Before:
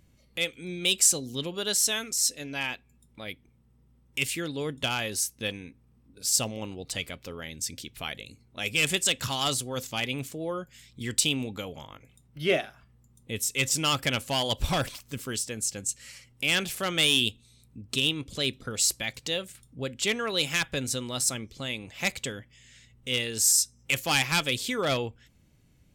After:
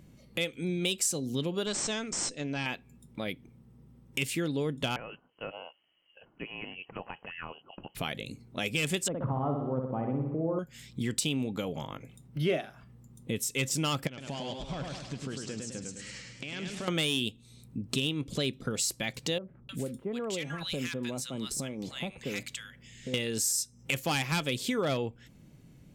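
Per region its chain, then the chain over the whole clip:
1.66–2.66 s: valve stage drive 24 dB, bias 0.65 + brick-wall FIR low-pass 8.9 kHz
4.96–7.95 s: high-pass 820 Hz 6 dB/octave + compression 4:1, threshold -39 dBFS + frequency inversion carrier 3.1 kHz
9.08–10.59 s: low-pass 1.1 kHz 24 dB/octave + flutter echo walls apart 10.6 m, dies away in 0.79 s
14.07–16.88 s: low-pass 7.3 kHz 24 dB/octave + compression 4:1, threshold -44 dBFS + modulated delay 103 ms, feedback 52%, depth 93 cents, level -4 dB
19.38–23.14 s: peaking EQ 99 Hz -5.5 dB 0.71 oct + compression 2:1, threshold -41 dBFS + bands offset in time lows, highs 310 ms, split 1.2 kHz
whole clip: tilt shelf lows +3.5 dB; compression 2.5:1, threshold -37 dBFS; resonant low shelf 110 Hz -6.5 dB, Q 1.5; trim +5.5 dB

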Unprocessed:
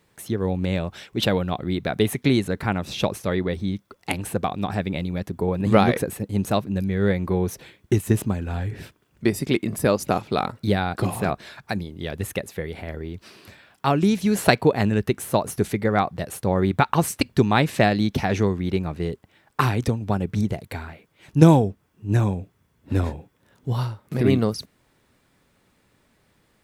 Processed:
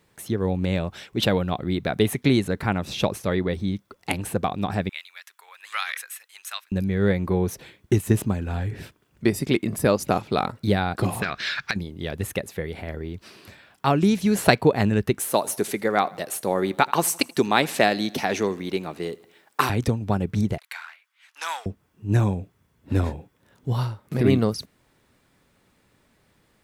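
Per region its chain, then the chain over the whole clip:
4.89–6.72 s: high-pass 1.4 kHz 24 dB/octave + band-stop 4.5 kHz, Q 19
11.22–11.76 s: high-order bell 2.8 kHz +15.5 dB 2.6 oct + compression 12:1, threshold -21 dBFS
15.19–19.70 s: high-pass 270 Hz + treble shelf 4.2 kHz +6.5 dB + feedback delay 81 ms, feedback 56%, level -22.5 dB
20.58–21.66 s: waveshaping leveller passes 1 + high-pass 1.2 kHz 24 dB/octave + treble shelf 6.2 kHz -5.5 dB
whole clip: none

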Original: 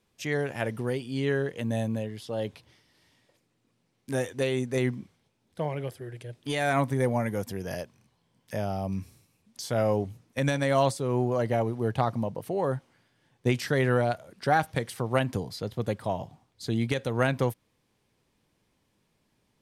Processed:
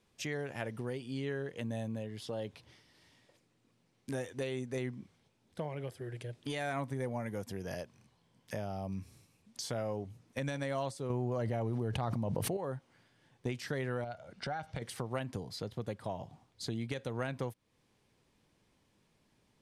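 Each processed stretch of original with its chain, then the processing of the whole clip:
11.10–12.57 s: bass shelf 120 Hz +9 dB + level flattener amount 100%
14.04–14.82 s: low-pass 6.1 kHz + compression 2.5:1, threshold -32 dBFS + comb 1.4 ms, depth 38%
whole clip: low-pass 11 kHz 12 dB/octave; compression 2.5:1, threshold -39 dBFS

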